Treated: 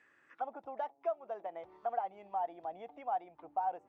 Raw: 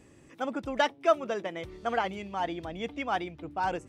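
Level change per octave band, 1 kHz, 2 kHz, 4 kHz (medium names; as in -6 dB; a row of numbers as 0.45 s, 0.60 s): -5.0 dB, -20.5 dB, under -25 dB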